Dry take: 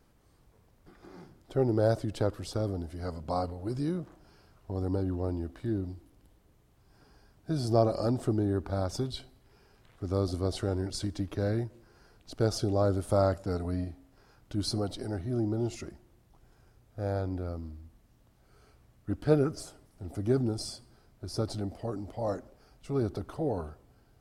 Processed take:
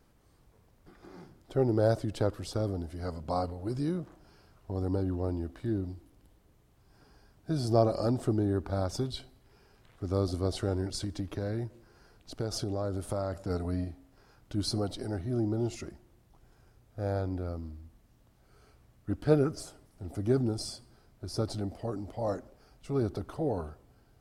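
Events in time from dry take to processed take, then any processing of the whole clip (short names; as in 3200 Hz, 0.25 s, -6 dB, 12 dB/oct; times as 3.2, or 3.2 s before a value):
11.02–13.5 compressor 4:1, threshold -29 dBFS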